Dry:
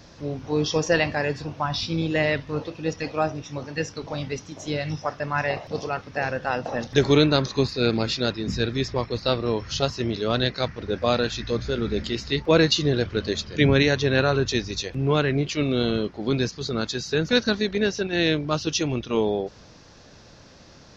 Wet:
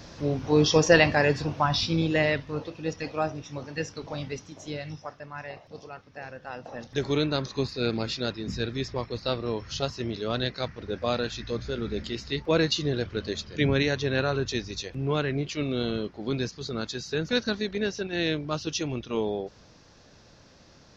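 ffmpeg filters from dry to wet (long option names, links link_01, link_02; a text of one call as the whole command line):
ffmpeg -i in.wav -af "volume=11.5dB,afade=type=out:start_time=1.45:duration=1.08:silence=0.446684,afade=type=out:start_time=4.23:duration=1.05:silence=0.316228,afade=type=in:start_time=6.38:duration=1.39:silence=0.375837" out.wav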